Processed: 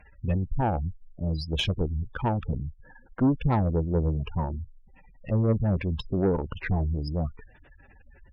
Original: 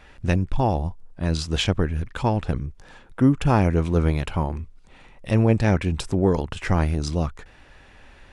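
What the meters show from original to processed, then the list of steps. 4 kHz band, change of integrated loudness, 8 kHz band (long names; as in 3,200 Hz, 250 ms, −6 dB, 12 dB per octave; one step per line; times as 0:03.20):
−4.5 dB, −5.0 dB, below −15 dB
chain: gate on every frequency bin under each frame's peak −15 dB strong
harmonic generator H 5 −19 dB, 6 −20 dB, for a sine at −6.5 dBFS
level −6 dB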